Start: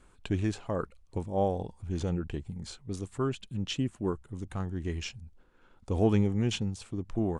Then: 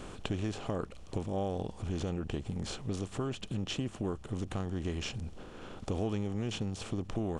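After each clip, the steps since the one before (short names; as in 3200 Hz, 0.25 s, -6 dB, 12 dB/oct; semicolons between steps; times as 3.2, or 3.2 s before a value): per-bin compression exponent 0.6; compressor 3:1, threshold -33 dBFS, peak gain reduction 11.5 dB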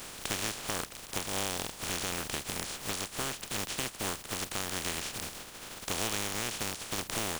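spectral contrast lowered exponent 0.24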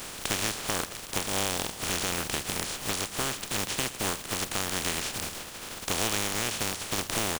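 tapped delay 0.114/0.488 s -18/-17.5 dB; gain +4.5 dB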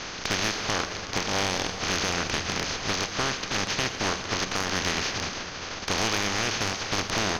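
rippled Chebyshev low-pass 6500 Hz, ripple 3 dB; soft clip -23 dBFS, distortion -16 dB; reverb RT60 3.4 s, pre-delay 37 ms, DRR 9 dB; gain +7 dB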